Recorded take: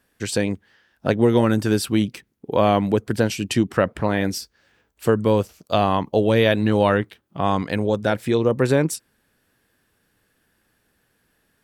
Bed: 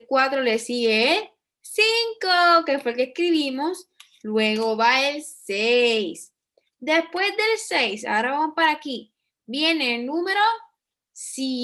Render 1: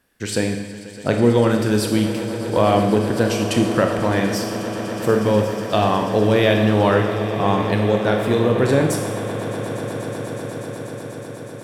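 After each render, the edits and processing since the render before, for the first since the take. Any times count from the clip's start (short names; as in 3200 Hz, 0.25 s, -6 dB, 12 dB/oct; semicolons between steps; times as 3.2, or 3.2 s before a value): swelling echo 0.122 s, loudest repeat 8, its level -17.5 dB; Schroeder reverb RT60 1.1 s, combs from 26 ms, DRR 3.5 dB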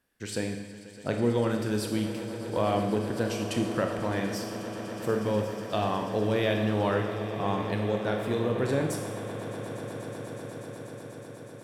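gain -10.5 dB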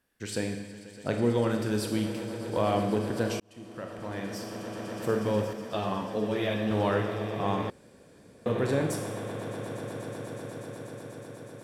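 3.4–4.96 fade in; 5.53–6.71 ensemble effect; 7.7–8.46 room tone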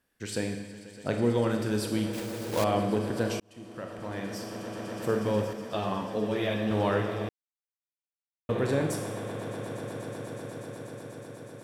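2.13–2.66 block floating point 3-bit; 7.29–8.49 mute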